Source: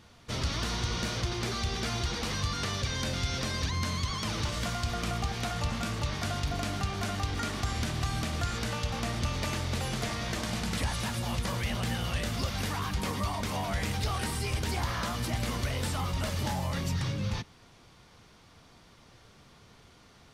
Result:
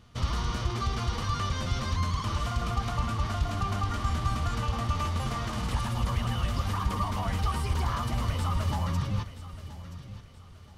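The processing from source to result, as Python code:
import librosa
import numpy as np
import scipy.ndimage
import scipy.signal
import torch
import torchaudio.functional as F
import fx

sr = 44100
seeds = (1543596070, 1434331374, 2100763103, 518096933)

y = np.clip(x, -10.0 ** (-23.0 / 20.0), 10.0 ** (-23.0 / 20.0))
y = fx.small_body(y, sr, hz=(1200.0, 3000.0), ring_ms=25, db=8)
y = fx.stretch_vocoder(y, sr, factor=0.53)
y = fx.low_shelf(y, sr, hz=170.0, db=11.5)
y = fx.echo_feedback(y, sr, ms=976, feedback_pct=35, wet_db=-13.5)
y = fx.dynamic_eq(y, sr, hz=1000.0, q=1.7, threshold_db=-48.0, ratio=4.0, max_db=7)
y = y * 10.0 ** (-3.5 / 20.0)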